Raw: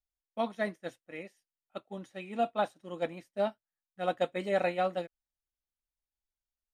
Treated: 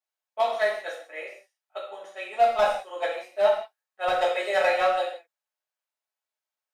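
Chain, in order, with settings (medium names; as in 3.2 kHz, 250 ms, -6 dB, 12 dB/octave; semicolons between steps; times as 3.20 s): high-pass 560 Hz 24 dB/octave; overload inside the chain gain 25 dB; gated-style reverb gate 210 ms falling, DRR -4.5 dB; tape noise reduction on one side only decoder only; trim +5 dB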